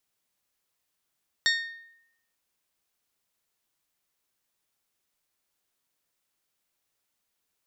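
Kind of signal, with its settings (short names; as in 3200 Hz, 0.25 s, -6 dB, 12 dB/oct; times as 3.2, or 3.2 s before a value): glass hit bell, lowest mode 1840 Hz, decay 0.79 s, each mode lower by 2.5 dB, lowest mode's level -20.5 dB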